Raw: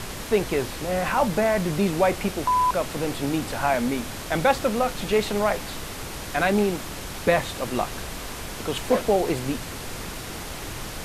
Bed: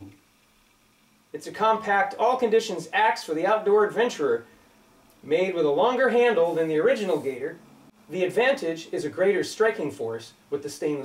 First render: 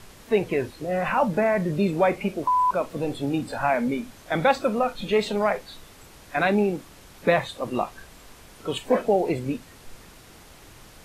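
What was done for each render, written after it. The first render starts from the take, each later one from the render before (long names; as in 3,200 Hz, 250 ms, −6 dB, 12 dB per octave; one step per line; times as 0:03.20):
noise reduction from a noise print 14 dB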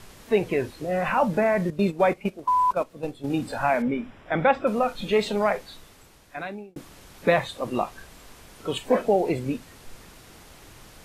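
0:01.70–0:03.30: noise gate −26 dBFS, range −12 dB
0:03.82–0:04.67: Savitzky-Golay smoothing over 25 samples
0:05.54–0:06.76: fade out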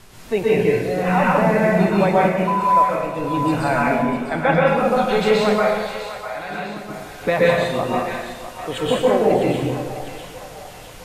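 echo with a time of its own for lows and highs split 610 Hz, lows 174 ms, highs 652 ms, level −10 dB
dense smooth reverb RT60 0.96 s, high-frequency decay 1×, pre-delay 110 ms, DRR −5.5 dB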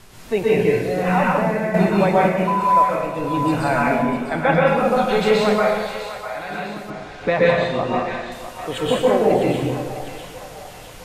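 0:01.13–0:01.74: fade out, to −7.5 dB
0:06.90–0:08.32: low-pass filter 4,900 Hz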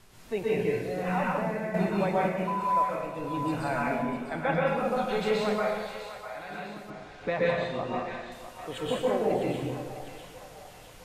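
level −10.5 dB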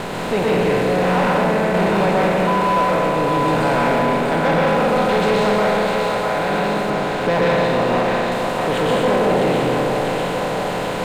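compressor on every frequency bin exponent 0.4
leveller curve on the samples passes 2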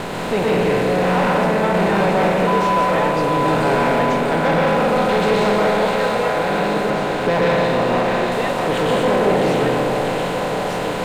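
mix in bed −5 dB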